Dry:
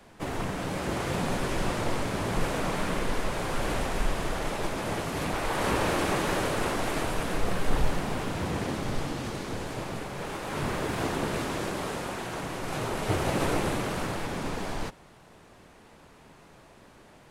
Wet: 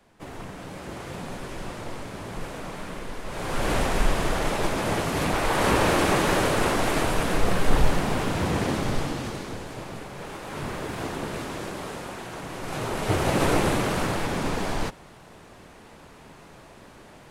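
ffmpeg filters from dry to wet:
ffmpeg -i in.wav -af "volume=13dB,afade=type=in:start_time=3.24:duration=0.52:silence=0.251189,afade=type=out:start_time=8.78:duration=0.85:silence=0.421697,afade=type=in:start_time=12.41:duration=1.15:silence=0.421697" out.wav

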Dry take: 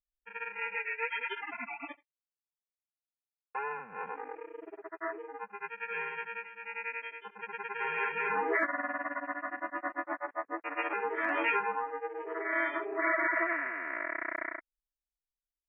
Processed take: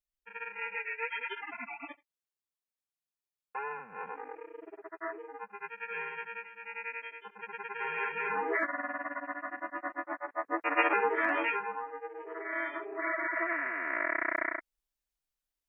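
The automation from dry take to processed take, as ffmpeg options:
ffmpeg -i in.wav -af "volume=16.5dB,afade=type=in:start_time=10.3:duration=0.46:silence=0.334965,afade=type=out:start_time=10.76:duration=0.79:silence=0.251189,afade=type=in:start_time=13.3:duration=0.75:silence=0.375837" out.wav

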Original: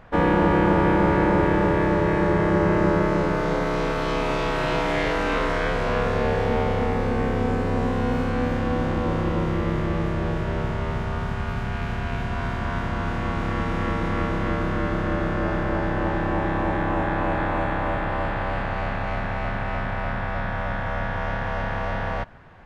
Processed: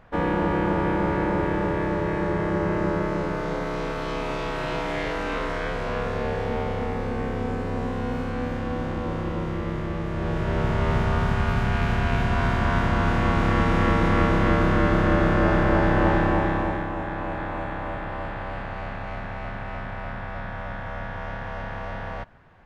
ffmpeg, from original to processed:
ffmpeg -i in.wav -af "volume=4.5dB,afade=type=in:start_time=10.06:duration=0.89:silence=0.354813,afade=type=out:start_time=16.11:duration=0.78:silence=0.298538" out.wav

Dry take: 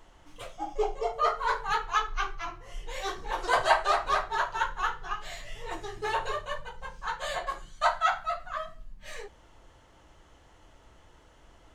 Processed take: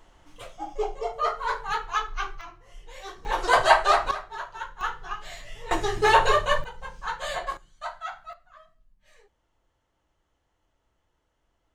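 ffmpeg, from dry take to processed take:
ffmpeg -i in.wav -af "asetnsamples=nb_out_samples=441:pad=0,asendcmd='2.41 volume volume -6.5dB;3.25 volume volume 5.5dB;4.11 volume volume -7dB;4.81 volume volume 0dB;5.71 volume volume 12dB;6.64 volume volume 2dB;7.57 volume volume -10dB;8.33 volume volume -17dB',volume=0dB" out.wav

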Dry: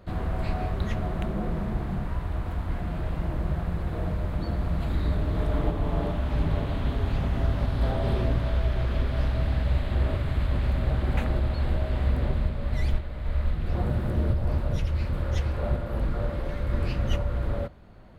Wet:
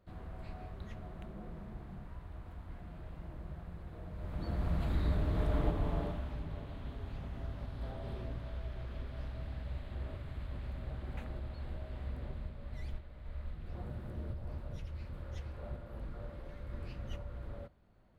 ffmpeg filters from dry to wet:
ffmpeg -i in.wav -af "volume=-6dB,afade=type=in:start_time=4.11:duration=0.57:silence=0.266073,afade=type=out:start_time=5.76:duration=0.65:silence=0.298538" out.wav

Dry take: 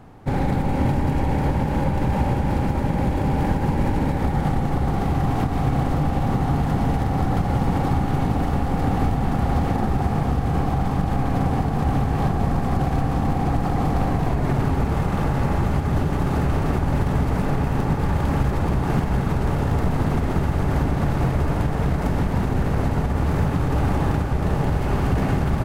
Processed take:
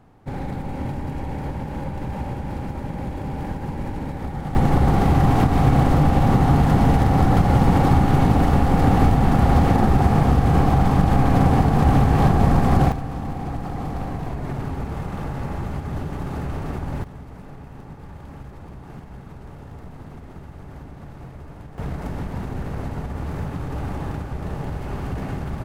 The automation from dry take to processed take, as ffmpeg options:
ffmpeg -i in.wav -af "asetnsamples=nb_out_samples=441:pad=0,asendcmd='4.55 volume volume 5dB;12.92 volume volume -7dB;17.04 volume volume -18dB;21.78 volume volume -7.5dB',volume=-7.5dB" out.wav

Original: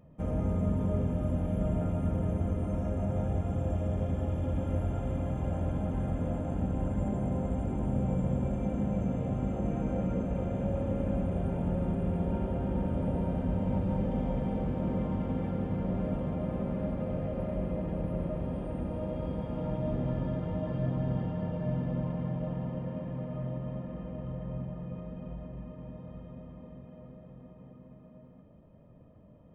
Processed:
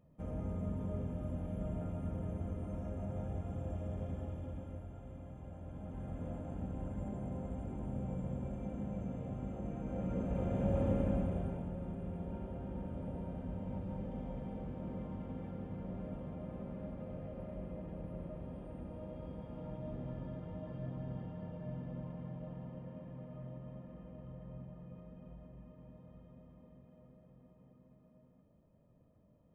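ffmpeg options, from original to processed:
ffmpeg -i in.wav -af "volume=7dB,afade=type=out:start_time=4.13:duration=0.73:silence=0.421697,afade=type=in:start_time=5.62:duration=0.64:silence=0.446684,afade=type=in:start_time=9.83:duration=1.03:silence=0.334965,afade=type=out:start_time=10.86:duration=0.83:silence=0.281838" out.wav

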